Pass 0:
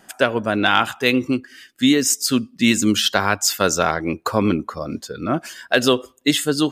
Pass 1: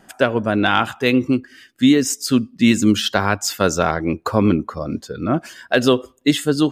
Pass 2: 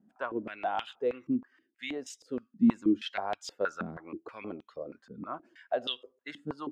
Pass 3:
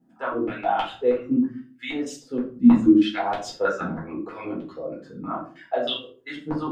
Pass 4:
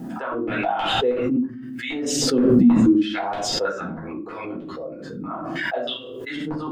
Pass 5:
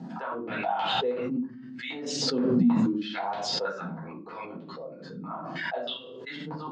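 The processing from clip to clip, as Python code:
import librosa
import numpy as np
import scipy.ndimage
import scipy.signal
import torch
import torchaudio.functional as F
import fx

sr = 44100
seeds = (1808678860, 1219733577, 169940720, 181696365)

y1 = fx.tilt_eq(x, sr, slope=-1.5)
y2 = fx.filter_held_bandpass(y1, sr, hz=6.3, low_hz=220.0, high_hz=3300.0)
y2 = y2 * librosa.db_to_amplitude(-6.5)
y3 = fx.room_shoebox(y2, sr, seeds[0], volume_m3=250.0, walls='furnished', distance_m=4.1)
y4 = fx.pre_swell(y3, sr, db_per_s=24.0)
y4 = y4 * librosa.db_to_amplitude(-2.0)
y5 = fx.cabinet(y4, sr, low_hz=140.0, low_slope=12, high_hz=6300.0, hz=(170.0, 320.0, 920.0, 4300.0), db=(7, -7, 6, 7))
y5 = y5 * librosa.db_to_amplitude(-7.0)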